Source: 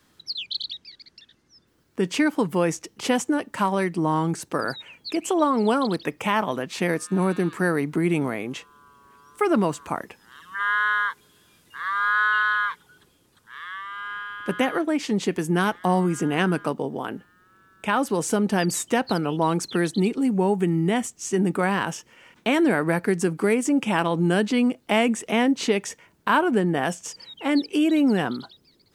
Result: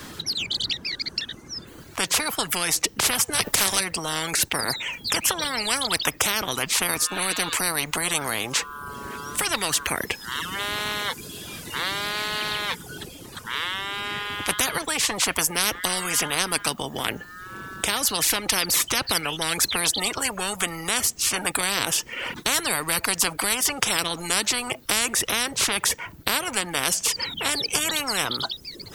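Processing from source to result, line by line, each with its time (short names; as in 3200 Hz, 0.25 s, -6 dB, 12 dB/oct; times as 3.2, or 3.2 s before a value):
3.33–3.79 spectral limiter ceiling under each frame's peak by 20 dB
whole clip: reverb removal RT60 0.56 s; spectral compressor 10:1; gain +4.5 dB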